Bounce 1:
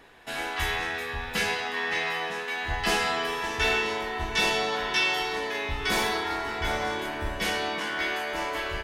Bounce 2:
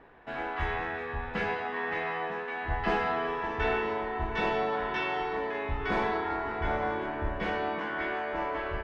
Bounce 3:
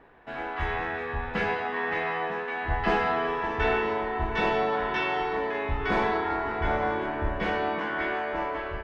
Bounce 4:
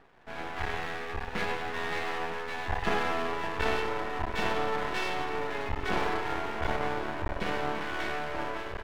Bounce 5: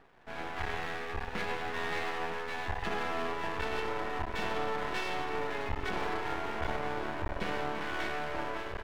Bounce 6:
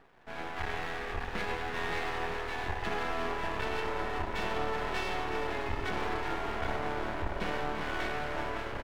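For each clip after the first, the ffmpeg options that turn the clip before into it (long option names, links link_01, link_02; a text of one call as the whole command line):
ffmpeg -i in.wav -af "lowpass=1500" out.wav
ffmpeg -i in.wav -af "dynaudnorm=framelen=270:gausssize=5:maxgain=3.5dB" out.wav
ffmpeg -i in.wav -af "aeval=exprs='max(val(0),0)':channel_layout=same" out.wav
ffmpeg -i in.wav -af "alimiter=limit=-19.5dB:level=0:latency=1:release=145,volume=-1.5dB" out.wav
ffmpeg -i in.wav -filter_complex "[0:a]asplit=8[link_01][link_02][link_03][link_04][link_05][link_06][link_07][link_08];[link_02]adelay=375,afreqshift=-39,volume=-9.5dB[link_09];[link_03]adelay=750,afreqshift=-78,volume=-14.5dB[link_10];[link_04]adelay=1125,afreqshift=-117,volume=-19.6dB[link_11];[link_05]adelay=1500,afreqshift=-156,volume=-24.6dB[link_12];[link_06]adelay=1875,afreqshift=-195,volume=-29.6dB[link_13];[link_07]adelay=2250,afreqshift=-234,volume=-34.7dB[link_14];[link_08]adelay=2625,afreqshift=-273,volume=-39.7dB[link_15];[link_01][link_09][link_10][link_11][link_12][link_13][link_14][link_15]amix=inputs=8:normalize=0" out.wav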